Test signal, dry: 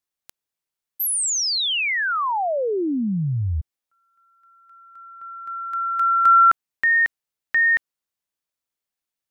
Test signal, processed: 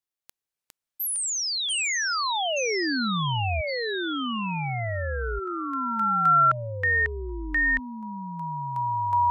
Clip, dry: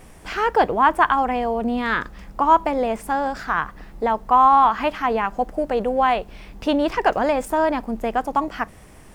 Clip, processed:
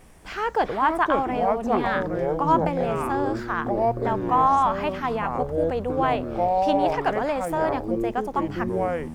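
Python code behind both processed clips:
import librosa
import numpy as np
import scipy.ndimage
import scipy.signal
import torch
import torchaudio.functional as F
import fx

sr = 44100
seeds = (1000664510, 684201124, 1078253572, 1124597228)

y = fx.echo_pitch(x, sr, ms=285, semitones=-6, count=3, db_per_echo=-3.0)
y = y * 10.0 ** (-5.5 / 20.0)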